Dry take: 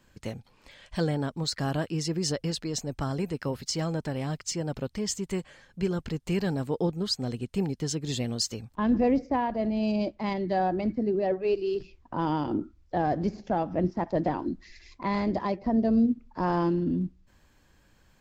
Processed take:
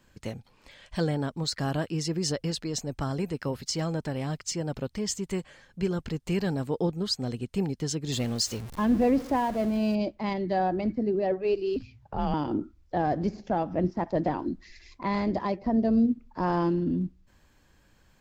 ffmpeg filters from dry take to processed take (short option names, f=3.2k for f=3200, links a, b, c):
-filter_complex "[0:a]asettb=1/sr,asplit=3[a][b][c];[a]atrim=end=8.124[d];[b]atrim=start=8.12:end=9.95,asetpts=PTS-STARTPTS,afade=t=in:d=0.004:c=qsin,afade=t=out:st=1.826:d=0.004:c=qsin,aeval=exprs='val(0)+0.5*0.0133*sgn(val(0))':c=same[e];[c]atrim=start=9.946[f];[d][e]acrossfade=d=0.004:c1=hsin:c2=qsin[g];[g][f]acrossfade=d=0.004:c1=qsin:c2=hsin,asettb=1/sr,asplit=3[h][i][j];[h]atrim=end=11.764[k];[i]atrim=start=11.76:end=12.34,asetpts=PTS-STARTPTS,afade=t=in:d=0.004:c=qsin,afade=t=out:st=0.576:d=0.004:c=qsin,afreqshift=-130[l];[j]atrim=start=12.336[m];[k][l]acrossfade=d=0.004:c1=hsin:c2=qsin[n];[n][m]acrossfade=d=0.004:c1=qsin:c2=hsin"